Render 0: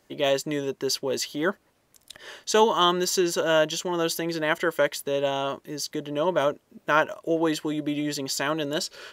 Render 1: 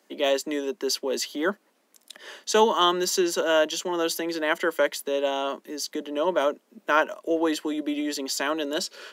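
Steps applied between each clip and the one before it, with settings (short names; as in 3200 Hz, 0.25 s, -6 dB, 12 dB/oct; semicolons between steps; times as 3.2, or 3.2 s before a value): steep high-pass 190 Hz 72 dB/oct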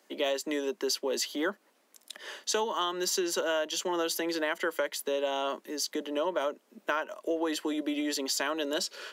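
low shelf 180 Hz -9.5 dB; compressor 10:1, threshold -26 dBFS, peak gain reduction 12 dB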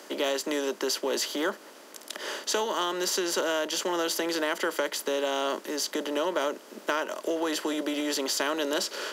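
per-bin compression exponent 0.6; gain -1 dB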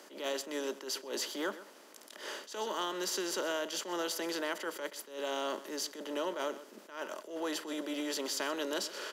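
echo 0.127 s -15.5 dB; attack slew limiter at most 120 dB/s; gain -7 dB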